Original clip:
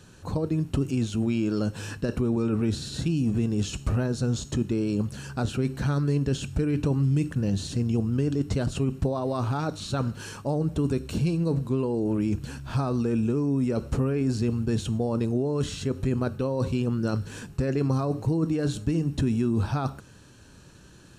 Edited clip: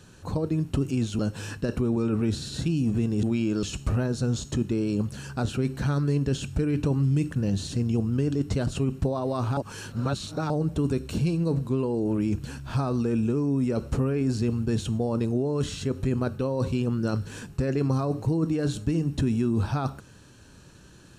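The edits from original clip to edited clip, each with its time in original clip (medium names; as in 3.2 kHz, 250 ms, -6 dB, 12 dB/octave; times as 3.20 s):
1.19–1.59 s: move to 3.63 s
9.57–10.50 s: reverse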